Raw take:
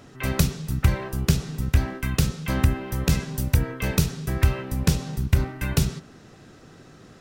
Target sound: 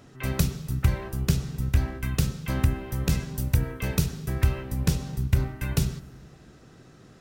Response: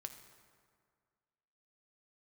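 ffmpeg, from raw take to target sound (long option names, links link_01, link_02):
-filter_complex "[0:a]asplit=2[link_01][link_02];[1:a]atrim=start_sample=2205,lowshelf=frequency=460:gain=10.5,highshelf=frequency=6500:gain=10.5[link_03];[link_02][link_03]afir=irnorm=-1:irlink=0,volume=-10dB[link_04];[link_01][link_04]amix=inputs=2:normalize=0,volume=-6.5dB"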